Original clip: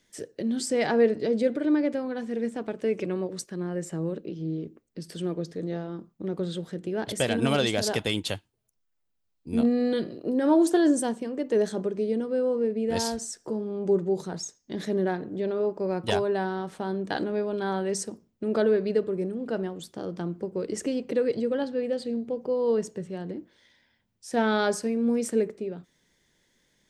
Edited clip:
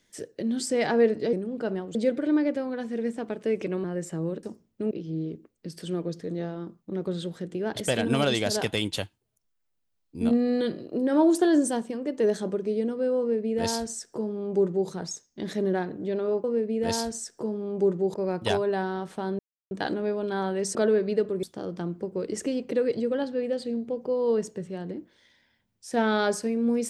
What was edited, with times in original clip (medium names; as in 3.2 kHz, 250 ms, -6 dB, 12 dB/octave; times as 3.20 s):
3.22–3.64 s: delete
12.51–14.21 s: copy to 15.76 s
17.01 s: insert silence 0.32 s
18.05–18.53 s: move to 4.23 s
19.21–19.83 s: move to 1.33 s